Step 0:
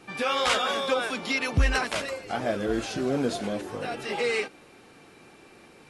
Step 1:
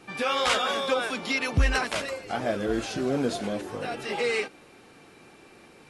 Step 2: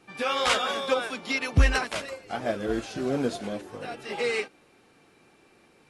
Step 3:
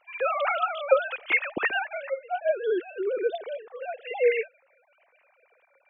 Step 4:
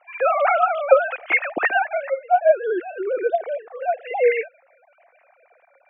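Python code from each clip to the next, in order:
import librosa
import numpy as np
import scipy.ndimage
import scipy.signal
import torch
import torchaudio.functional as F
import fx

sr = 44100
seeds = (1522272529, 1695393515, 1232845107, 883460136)

y1 = x
y2 = fx.upward_expand(y1, sr, threshold_db=-38.0, expansion=1.5)
y2 = y2 * librosa.db_to_amplitude(3.5)
y3 = fx.sine_speech(y2, sr)
y4 = fx.cabinet(y3, sr, low_hz=280.0, low_slope=12, high_hz=2300.0, hz=(420.0, 710.0, 1000.0), db=(-5, 8, -3))
y4 = y4 * librosa.db_to_amplitude(6.5)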